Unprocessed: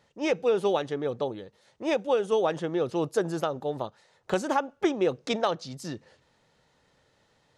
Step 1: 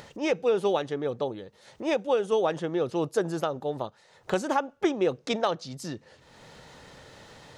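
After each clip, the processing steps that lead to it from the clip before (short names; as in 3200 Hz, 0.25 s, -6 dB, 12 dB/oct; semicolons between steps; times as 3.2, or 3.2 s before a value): upward compressor, threshold -34 dBFS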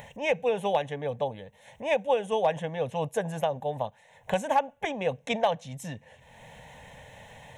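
fixed phaser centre 1300 Hz, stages 6; hard clip -18.5 dBFS, distortion -31 dB; gain +4 dB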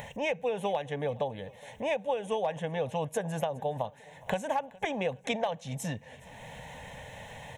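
compressor 4:1, threshold -32 dBFS, peak gain reduction 12 dB; feedback echo 0.416 s, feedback 49%, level -23 dB; gain +3.5 dB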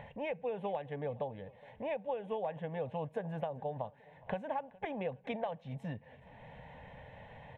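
air absorption 450 m; gain -5 dB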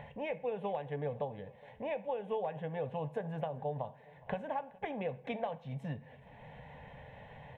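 reverb RT60 0.60 s, pre-delay 3 ms, DRR 11 dB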